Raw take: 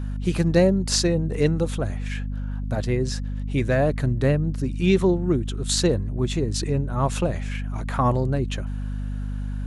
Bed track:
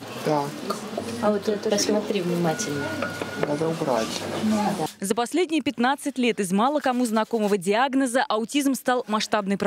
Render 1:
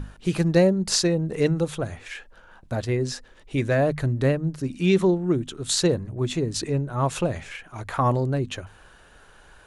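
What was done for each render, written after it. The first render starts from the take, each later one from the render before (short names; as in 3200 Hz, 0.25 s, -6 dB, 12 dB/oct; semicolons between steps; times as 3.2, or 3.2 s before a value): notches 50/100/150/200/250 Hz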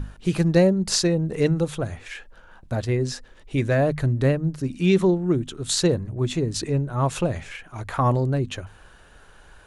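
low shelf 150 Hz +4 dB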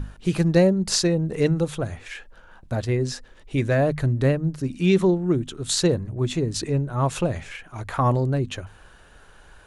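nothing audible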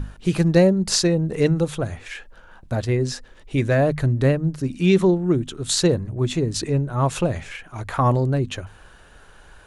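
gain +2 dB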